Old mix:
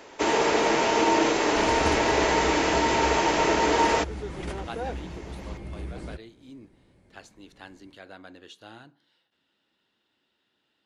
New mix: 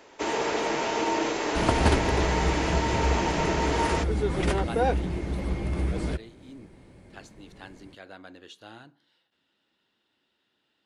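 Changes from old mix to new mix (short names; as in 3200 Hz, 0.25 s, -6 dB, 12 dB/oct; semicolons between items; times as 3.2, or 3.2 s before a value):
first sound -5.0 dB; second sound +9.0 dB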